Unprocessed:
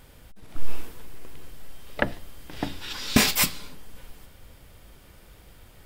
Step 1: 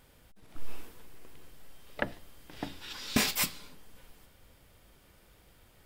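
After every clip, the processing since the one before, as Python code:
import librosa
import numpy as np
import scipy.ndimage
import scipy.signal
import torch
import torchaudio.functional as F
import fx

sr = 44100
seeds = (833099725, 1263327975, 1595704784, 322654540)

y = fx.low_shelf(x, sr, hz=110.0, db=-5.0)
y = F.gain(torch.from_numpy(y), -7.5).numpy()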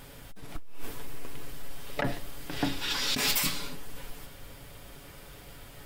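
y = x + 0.44 * np.pad(x, (int(7.1 * sr / 1000.0), 0))[:len(x)]
y = fx.over_compress(y, sr, threshold_db=-33.0, ratio=-1.0)
y = 10.0 ** (-26.5 / 20.0) * np.tanh(y / 10.0 ** (-26.5 / 20.0))
y = F.gain(torch.from_numpy(y), 7.5).numpy()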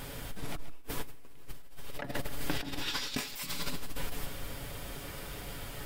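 y = fx.echo_feedback(x, sr, ms=132, feedback_pct=41, wet_db=-13)
y = fx.over_compress(y, sr, threshold_db=-33.0, ratio=-0.5)
y = F.gain(torch.from_numpy(y), 1.0).numpy()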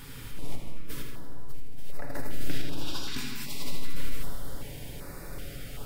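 y = fx.echo_feedback(x, sr, ms=81, feedback_pct=57, wet_db=-8.0)
y = fx.room_shoebox(y, sr, seeds[0], volume_m3=130.0, walls='hard', distance_m=0.34)
y = fx.filter_held_notch(y, sr, hz=2.6, low_hz=620.0, high_hz=3100.0)
y = F.gain(torch.from_numpy(y), -2.5).numpy()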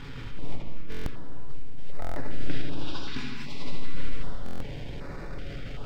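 y = fx.law_mismatch(x, sr, coded='mu')
y = fx.air_absorb(y, sr, metres=180.0)
y = fx.buffer_glitch(y, sr, at_s=(0.9, 2.0, 4.44), block=1024, repeats=6)
y = F.gain(torch.from_numpy(y), 2.0).numpy()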